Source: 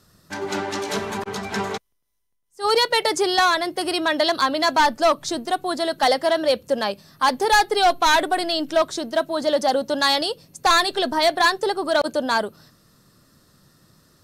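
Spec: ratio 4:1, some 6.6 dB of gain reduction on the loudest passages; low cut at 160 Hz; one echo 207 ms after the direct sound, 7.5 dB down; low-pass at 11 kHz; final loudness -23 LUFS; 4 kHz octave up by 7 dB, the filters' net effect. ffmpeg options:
-af "highpass=160,lowpass=11000,equalizer=f=4000:t=o:g=8,acompressor=threshold=0.112:ratio=4,aecho=1:1:207:0.422,volume=0.891"

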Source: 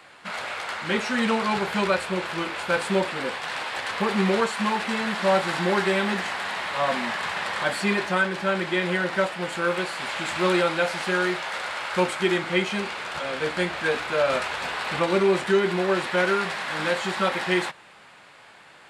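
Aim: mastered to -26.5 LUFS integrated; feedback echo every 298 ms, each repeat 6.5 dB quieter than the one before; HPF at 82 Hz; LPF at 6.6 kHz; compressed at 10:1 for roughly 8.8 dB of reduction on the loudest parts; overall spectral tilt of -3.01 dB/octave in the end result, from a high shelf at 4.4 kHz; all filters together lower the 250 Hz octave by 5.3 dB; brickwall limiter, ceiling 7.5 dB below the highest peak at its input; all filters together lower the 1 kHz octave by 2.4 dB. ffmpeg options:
-af "highpass=82,lowpass=6600,equalizer=f=250:t=o:g=-8.5,equalizer=f=1000:t=o:g=-3,highshelf=f=4400:g=4,acompressor=threshold=0.0398:ratio=10,alimiter=level_in=1.12:limit=0.0631:level=0:latency=1,volume=0.891,aecho=1:1:298|596|894|1192|1490|1788:0.473|0.222|0.105|0.0491|0.0231|0.0109,volume=2"

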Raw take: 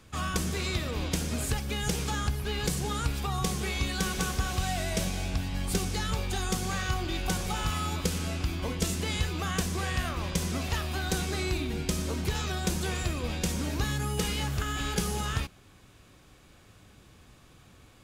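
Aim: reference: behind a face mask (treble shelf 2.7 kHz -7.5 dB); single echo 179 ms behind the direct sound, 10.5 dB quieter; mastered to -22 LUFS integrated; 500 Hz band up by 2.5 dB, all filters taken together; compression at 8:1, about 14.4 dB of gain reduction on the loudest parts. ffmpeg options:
-af "equalizer=f=500:t=o:g=3.5,acompressor=threshold=0.0112:ratio=8,highshelf=f=2700:g=-7.5,aecho=1:1:179:0.299,volume=11.9"

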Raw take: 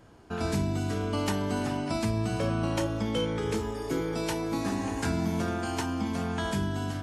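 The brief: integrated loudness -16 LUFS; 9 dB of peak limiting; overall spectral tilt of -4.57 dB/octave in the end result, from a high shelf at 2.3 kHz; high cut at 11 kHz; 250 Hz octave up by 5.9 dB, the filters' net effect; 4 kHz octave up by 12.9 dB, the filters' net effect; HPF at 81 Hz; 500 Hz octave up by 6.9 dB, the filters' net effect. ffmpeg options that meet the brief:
-af "highpass=81,lowpass=11000,equalizer=f=250:t=o:g=5.5,equalizer=f=500:t=o:g=6.5,highshelf=f=2300:g=8.5,equalizer=f=4000:t=o:g=9,volume=3.35,alimiter=limit=0.473:level=0:latency=1"

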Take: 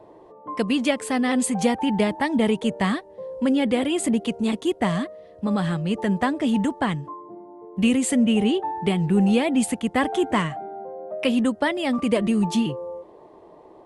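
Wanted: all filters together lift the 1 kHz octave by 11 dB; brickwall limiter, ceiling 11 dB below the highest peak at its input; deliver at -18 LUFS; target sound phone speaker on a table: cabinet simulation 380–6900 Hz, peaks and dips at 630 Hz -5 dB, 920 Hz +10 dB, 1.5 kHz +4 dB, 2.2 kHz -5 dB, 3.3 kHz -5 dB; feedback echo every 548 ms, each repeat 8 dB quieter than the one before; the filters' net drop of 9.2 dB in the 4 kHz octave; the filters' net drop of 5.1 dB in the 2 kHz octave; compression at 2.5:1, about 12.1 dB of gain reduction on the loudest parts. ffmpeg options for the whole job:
-af "equalizer=f=1000:t=o:g=8,equalizer=f=2000:t=o:g=-7.5,equalizer=f=4000:t=o:g=-5,acompressor=threshold=0.02:ratio=2.5,alimiter=level_in=1.68:limit=0.0631:level=0:latency=1,volume=0.596,highpass=f=380:w=0.5412,highpass=f=380:w=1.3066,equalizer=f=630:t=q:w=4:g=-5,equalizer=f=920:t=q:w=4:g=10,equalizer=f=1500:t=q:w=4:g=4,equalizer=f=2200:t=q:w=4:g=-5,equalizer=f=3300:t=q:w=4:g=-5,lowpass=f=6900:w=0.5412,lowpass=f=6900:w=1.3066,aecho=1:1:548|1096|1644|2192|2740:0.398|0.159|0.0637|0.0255|0.0102,volume=7.94"

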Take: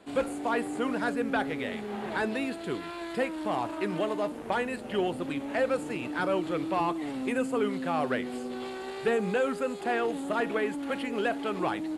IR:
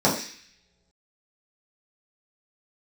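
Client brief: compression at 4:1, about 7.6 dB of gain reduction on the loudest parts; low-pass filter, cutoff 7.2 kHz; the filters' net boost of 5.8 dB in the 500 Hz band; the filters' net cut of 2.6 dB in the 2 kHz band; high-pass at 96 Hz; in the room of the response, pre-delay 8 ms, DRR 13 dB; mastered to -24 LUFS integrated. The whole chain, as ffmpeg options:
-filter_complex "[0:a]highpass=96,lowpass=7200,equalizer=f=500:t=o:g=7,equalizer=f=2000:t=o:g=-4,acompressor=threshold=0.0501:ratio=4,asplit=2[s0][s1];[1:a]atrim=start_sample=2205,adelay=8[s2];[s1][s2]afir=irnorm=-1:irlink=0,volume=0.0282[s3];[s0][s3]amix=inputs=2:normalize=0,volume=2"

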